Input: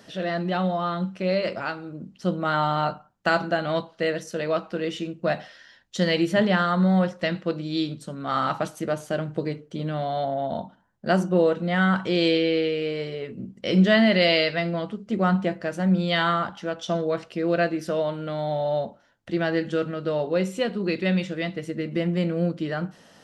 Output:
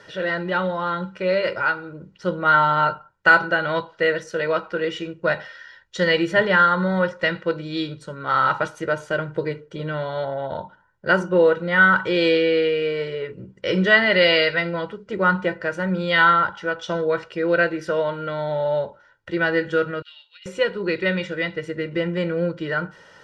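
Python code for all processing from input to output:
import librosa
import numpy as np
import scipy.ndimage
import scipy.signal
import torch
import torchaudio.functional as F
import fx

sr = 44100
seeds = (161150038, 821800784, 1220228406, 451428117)

y = fx.chain(x, sr, fx.ladder_highpass(hz=2700.0, resonance_pct=60),
    fx.over_compress(threshold_db=-47.0, ratio=-0.5), at=(20.02, 20.46))
y = scipy.signal.sosfilt(scipy.signal.bessel(2, 5600.0, 'lowpass', norm='mag', fs=sr, output='sos'), y)
y = fx.peak_eq(y, sr, hz=1500.0, db=8.5, octaves=0.98)
y = y + 0.72 * np.pad(y, (int(2.1 * sr / 1000.0), 0))[:len(y)]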